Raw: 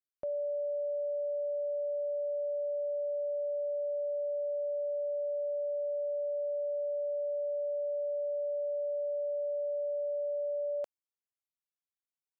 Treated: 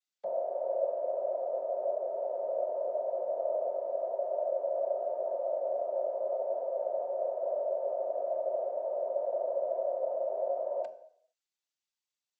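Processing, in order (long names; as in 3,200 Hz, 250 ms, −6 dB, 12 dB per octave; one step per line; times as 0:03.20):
high-pass filter 410 Hz 6 dB per octave
cochlear-implant simulation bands 16
on a send: convolution reverb RT60 0.65 s, pre-delay 3 ms, DRR 9 dB
on the sum: level +1.5 dB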